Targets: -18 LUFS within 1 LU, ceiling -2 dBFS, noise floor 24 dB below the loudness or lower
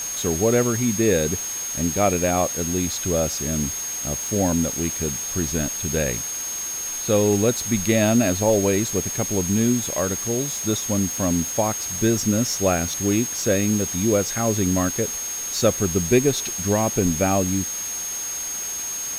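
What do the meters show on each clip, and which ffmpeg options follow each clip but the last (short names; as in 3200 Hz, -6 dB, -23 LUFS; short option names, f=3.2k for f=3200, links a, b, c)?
steady tone 6500 Hz; tone level -27 dBFS; noise floor -29 dBFS; noise floor target -46 dBFS; loudness -21.5 LUFS; peak -5.0 dBFS; loudness target -18.0 LUFS
-> -af "bandreject=f=6.5k:w=30"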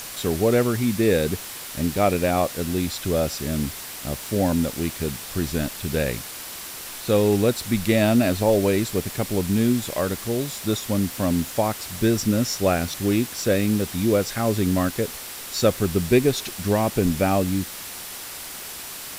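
steady tone none; noise floor -36 dBFS; noise floor target -48 dBFS
-> -af "afftdn=nr=12:nf=-36"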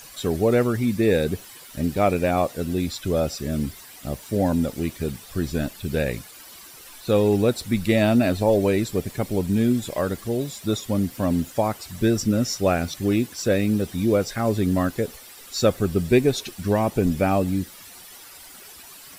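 noise floor -44 dBFS; noise floor target -47 dBFS
-> -af "afftdn=nr=6:nf=-44"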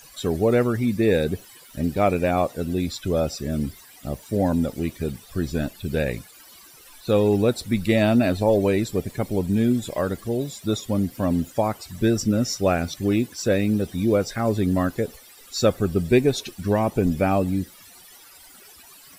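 noise floor -48 dBFS; loudness -23.0 LUFS; peak -5.5 dBFS; loudness target -18.0 LUFS
-> -af "volume=5dB,alimiter=limit=-2dB:level=0:latency=1"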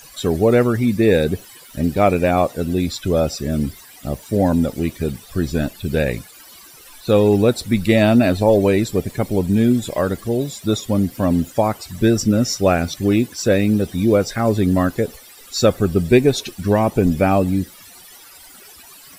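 loudness -18.0 LUFS; peak -2.0 dBFS; noise floor -43 dBFS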